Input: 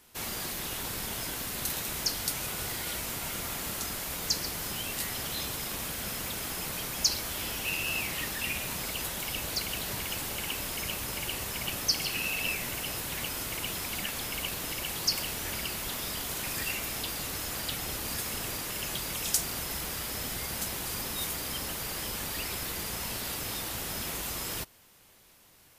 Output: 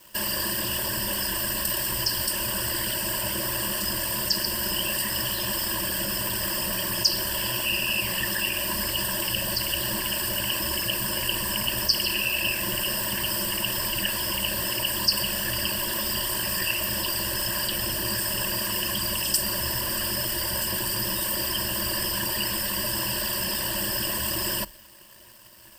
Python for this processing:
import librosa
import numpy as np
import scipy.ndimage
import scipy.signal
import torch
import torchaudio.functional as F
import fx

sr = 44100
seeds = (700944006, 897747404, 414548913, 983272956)

p1 = fx.whisperise(x, sr, seeds[0])
p2 = fx.over_compress(p1, sr, threshold_db=-41.0, ratio=-1.0)
p3 = p1 + F.gain(torch.from_numpy(p2), 2.0).numpy()
p4 = fx.ripple_eq(p3, sr, per_octave=1.3, db=16)
y = np.sign(p4) * np.maximum(np.abs(p4) - 10.0 ** (-47.5 / 20.0), 0.0)